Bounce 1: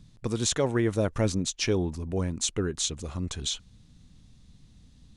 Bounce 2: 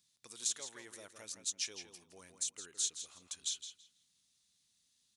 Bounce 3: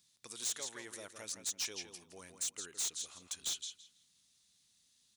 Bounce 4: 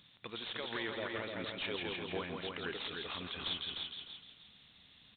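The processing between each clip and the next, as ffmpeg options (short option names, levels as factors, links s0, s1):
-filter_complex "[0:a]alimiter=limit=0.141:level=0:latency=1:release=270,aderivative,asplit=2[s0][s1];[s1]adelay=165,lowpass=f=4900:p=1,volume=0.422,asplit=2[s2][s3];[s3]adelay=165,lowpass=f=4900:p=1,volume=0.24,asplit=2[s4][s5];[s5]adelay=165,lowpass=f=4900:p=1,volume=0.24[s6];[s0][s2][s4][s6]amix=inputs=4:normalize=0,volume=0.668"
-af "asoftclip=type=hard:threshold=0.0141,volume=1.58"
-af "alimiter=level_in=10.6:limit=0.0631:level=0:latency=1:release=52,volume=0.0944,aresample=8000,acrusher=bits=3:mode=log:mix=0:aa=0.000001,aresample=44100,aecho=1:1:301|602|903:0.596|0.149|0.0372,volume=6.68"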